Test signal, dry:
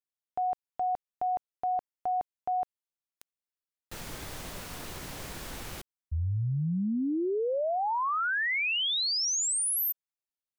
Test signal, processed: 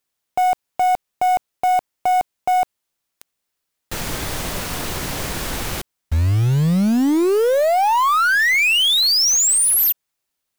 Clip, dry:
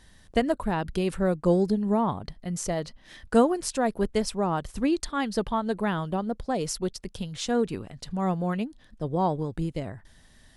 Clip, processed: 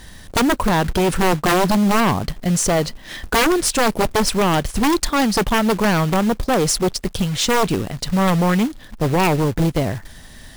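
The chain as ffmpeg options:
ffmpeg -i in.wav -filter_complex "[0:a]asplit=2[link_01][link_02];[link_02]aeval=exprs='clip(val(0),-1,0.0316)':channel_layout=same,volume=-7dB[link_03];[link_01][link_03]amix=inputs=2:normalize=0,acrusher=bits=3:mode=log:mix=0:aa=0.000001,aeval=exprs='0.473*sin(PI/2*5.01*val(0)/0.473)':channel_layout=same,volume=-6dB" out.wav

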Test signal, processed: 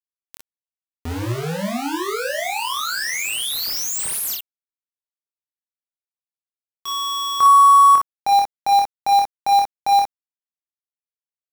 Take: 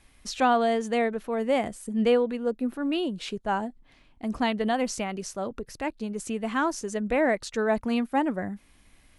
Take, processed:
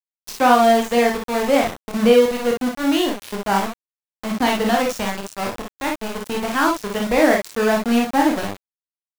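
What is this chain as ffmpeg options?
ffmpeg -i in.wav -af "aeval=exprs='val(0)*gte(abs(val(0)),0.0376)':channel_layout=same,aecho=1:1:25|51|61:0.596|0.501|0.562,volume=5.5dB" out.wav

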